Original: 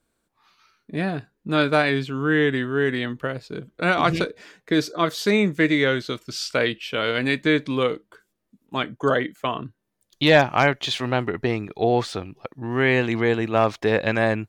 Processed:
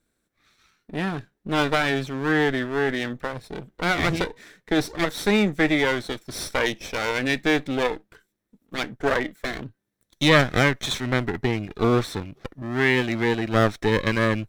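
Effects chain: minimum comb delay 0.53 ms; 12.62–13.48 low shelf 92 Hz -10.5 dB

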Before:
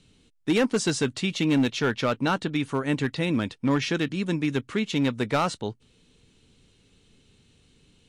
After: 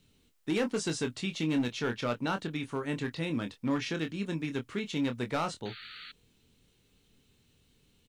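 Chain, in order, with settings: requantised 12-bit, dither triangular; doubler 25 ms -7.5 dB; painted sound noise, 5.65–6.12, 1200–4600 Hz -39 dBFS; gain -8 dB

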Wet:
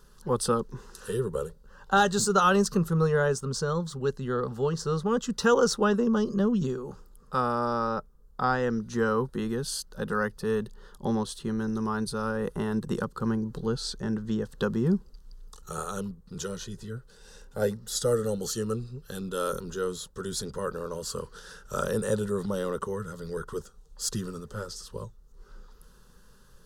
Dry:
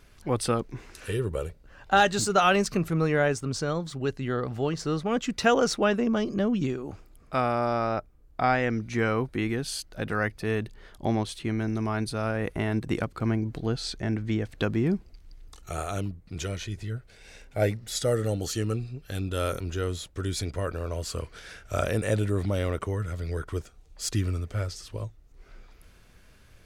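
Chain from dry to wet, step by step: fixed phaser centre 450 Hz, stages 8; gain +2.5 dB

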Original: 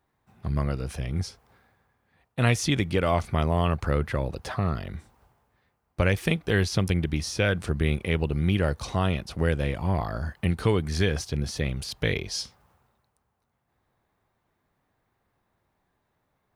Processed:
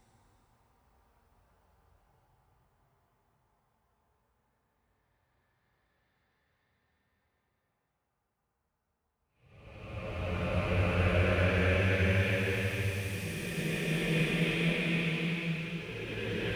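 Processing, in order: rattling part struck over -36 dBFS, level -18 dBFS; Paulstretch 12×, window 0.25 s, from 5.1; gain -6.5 dB

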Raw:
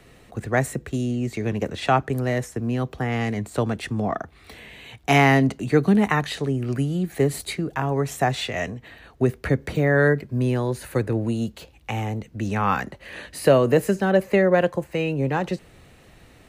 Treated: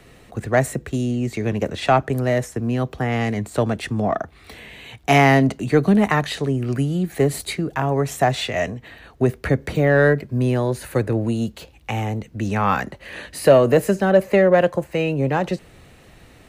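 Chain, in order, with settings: dynamic EQ 620 Hz, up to +5 dB, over -36 dBFS, Q 4.2; in parallel at -5 dB: soft clip -14 dBFS, distortion -12 dB; on the sum: gain -1 dB

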